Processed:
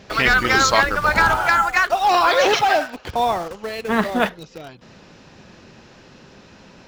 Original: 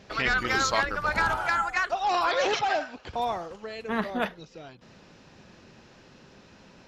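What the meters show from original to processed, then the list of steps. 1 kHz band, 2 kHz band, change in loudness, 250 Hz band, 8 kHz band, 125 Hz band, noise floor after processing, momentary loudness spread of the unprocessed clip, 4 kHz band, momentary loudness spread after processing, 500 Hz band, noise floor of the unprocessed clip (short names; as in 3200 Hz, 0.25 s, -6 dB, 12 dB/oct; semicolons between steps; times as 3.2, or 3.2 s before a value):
+9.5 dB, +9.5 dB, +9.5 dB, +9.0 dB, +9.5 dB, +9.0 dB, -47 dBFS, 13 LU, +9.5 dB, 9 LU, +9.5 dB, -54 dBFS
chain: in parallel at -10.5 dB: bit-crush 6-bit; on the sum: gain +7 dB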